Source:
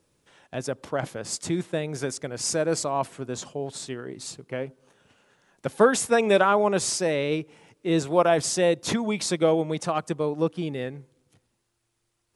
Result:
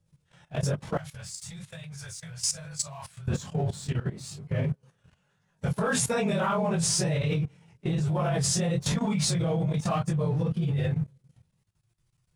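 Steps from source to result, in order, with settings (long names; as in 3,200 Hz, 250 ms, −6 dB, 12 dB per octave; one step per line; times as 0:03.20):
random phases in long frames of 50 ms
low shelf with overshoot 210 Hz +10 dB, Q 3
leveller curve on the samples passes 1
brickwall limiter −14.5 dBFS, peak gain reduction 11 dB
chorus effect 1.1 Hz, delay 19.5 ms, depth 4.4 ms
0:00.97–0:03.28: guitar amp tone stack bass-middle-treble 10-0-10
output level in coarse steps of 15 dB
level +4 dB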